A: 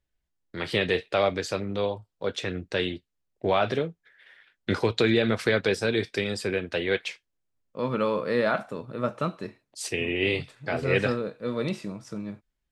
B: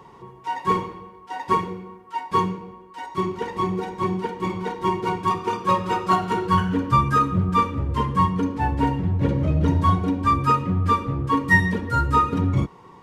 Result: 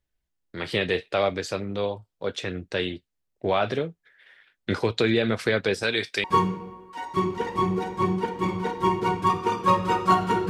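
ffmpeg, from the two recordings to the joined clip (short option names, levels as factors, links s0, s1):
-filter_complex "[0:a]asettb=1/sr,asplit=3[s0][s1][s2];[s0]atrim=end=5.834[s3];[s1]atrim=start=5.83:end=6.24,asetpts=PTS-STARTPTS,afade=t=in:d=0.004:c=qsin,afade=t=out:st=0.406:d=0.004:c=qsin,tiltshelf=f=710:g=-6.5[s4];[s2]atrim=start=6.236[s5];[s3][s4]acrossfade=d=0.004:c1=hsin:c2=qsin[s6];[s6][s5]acrossfade=d=0.004:c1=qsin:c2=hsin,apad=whole_dur=10.49,atrim=end=10.49,atrim=end=6.242[s7];[1:a]atrim=start=2.248:end=6.5[s8];[s7][s8]acrossfade=d=0.004:c1=hsin:c2=hsin"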